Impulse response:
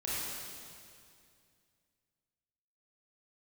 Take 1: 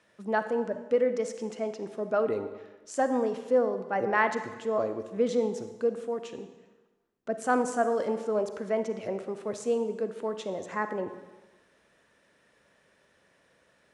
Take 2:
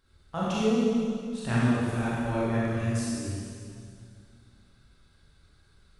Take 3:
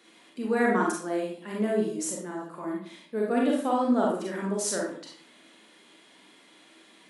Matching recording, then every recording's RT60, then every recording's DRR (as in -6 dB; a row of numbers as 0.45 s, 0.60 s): 2; 1.2 s, 2.3 s, 0.55 s; 9.0 dB, -9.0 dB, -3.0 dB